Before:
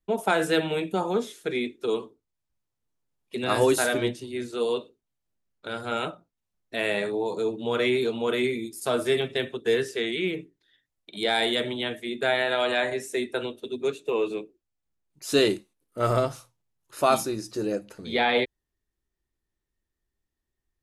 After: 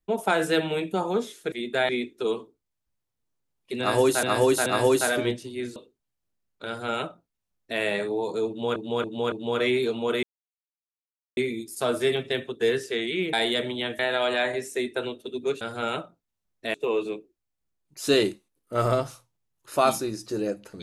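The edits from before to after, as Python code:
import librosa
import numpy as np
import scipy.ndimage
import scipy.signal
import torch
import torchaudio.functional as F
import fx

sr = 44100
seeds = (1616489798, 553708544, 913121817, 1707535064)

y = fx.edit(x, sr, fx.repeat(start_s=3.43, length_s=0.43, count=3),
    fx.cut(start_s=4.53, length_s=0.26),
    fx.duplicate(start_s=5.7, length_s=1.13, to_s=13.99),
    fx.repeat(start_s=7.51, length_s=0.28, count=4),
    fx.insert_silence(at_s=8.42, length_s=1.14),
    fx.cut(start_s=10.38, length_s=0.96),
    fx.move(start_s=12.0, length_s=0.37, to_s=1.52), tone=tone)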